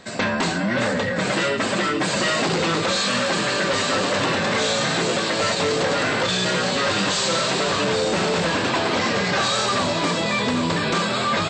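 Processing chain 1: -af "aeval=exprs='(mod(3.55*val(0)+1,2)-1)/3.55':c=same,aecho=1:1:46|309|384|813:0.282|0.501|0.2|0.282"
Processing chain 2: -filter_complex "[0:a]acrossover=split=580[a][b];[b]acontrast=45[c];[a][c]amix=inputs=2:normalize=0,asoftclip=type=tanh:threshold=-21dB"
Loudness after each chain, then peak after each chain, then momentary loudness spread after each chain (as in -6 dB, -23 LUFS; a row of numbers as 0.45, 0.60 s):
-19.0, -22.0 LUFS; -7.0, -21.0 dBFS; 2, 2 LU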